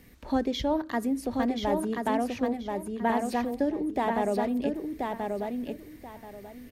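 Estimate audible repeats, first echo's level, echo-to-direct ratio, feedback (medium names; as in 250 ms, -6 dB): 3, -4.0 dB, -4.0 dB, 23%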